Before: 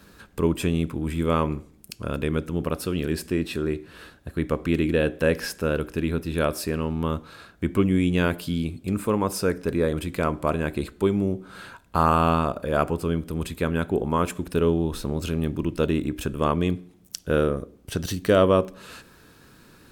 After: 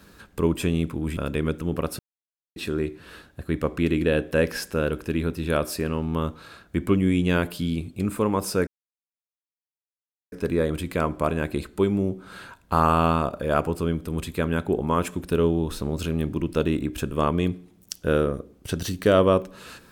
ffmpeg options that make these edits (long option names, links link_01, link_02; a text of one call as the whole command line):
ffmpeg -i in.wav -filter_complex "[0:a]asplit=5[link_01][link_02][link_03][link_04][link_05];[link_01]atrim=end=1.172[link_06];[link_02]atrim=start=2.048:end=2.87,asetpts=PTS-STARTPTS,afade=type=out:start_time=0.818:duration=0.004:curve=hsin[link_07];[link_03]atrim=start=2.87:end=3.44,asetpts=PTS-STARTPTS,volume=0[link_08];[link_04]atrim=start=3.44:end=9.55,asetpts=PTS-STARTPTS,afade=type=in:duration=0.004:curve=hsin,afade=type=out:start_time=6.106:duration=0.004:curve=hsin,apad=pad_dur=1.65[link_09];[link_05]atrim=start=9.55,asetpts=PTS-STARTPTS,afade=type=in:duration=0.004:curve=hsin[link_10];[link_07][link_08][link_09][link_10]concat=n=4:v=0:a=1[link_11];[link_06][link_11]acrossfade=duration=0.004:curve1=hsin:curve2=hsin" out.wav